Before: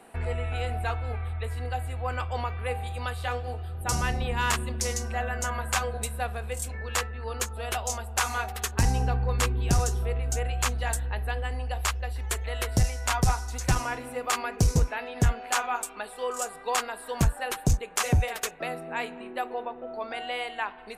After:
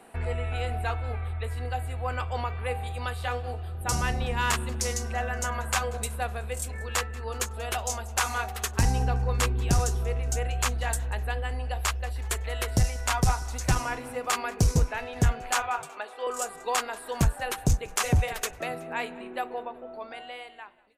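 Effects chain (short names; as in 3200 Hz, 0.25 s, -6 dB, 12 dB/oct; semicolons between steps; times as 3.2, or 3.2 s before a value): ending faded out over 1.67 s; 15.62–16.27 three-band isolator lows -22 dB, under 290 Hz, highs -15 dB, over 4600 Hz; frequency-shifting echo 0.186 s, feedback 52%, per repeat -68 Hz, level -23 dB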